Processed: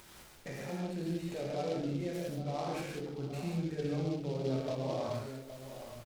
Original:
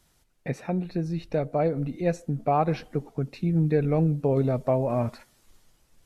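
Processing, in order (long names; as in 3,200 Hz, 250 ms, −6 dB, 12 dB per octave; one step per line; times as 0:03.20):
low-shelf EQ 210 Hz −8.5 dB
upward compression, threshold −37 dBFS
brickwall limiter −26 dBFS, peak gain reduction 13 dB
slap from a distant wall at 140 metres, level −11 dB
reverb whose tail is shaped and stops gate 220 ms flat, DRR −5 dB
short delay modulated by noise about 3,500 Hz, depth 0.036 ms
level −8 dB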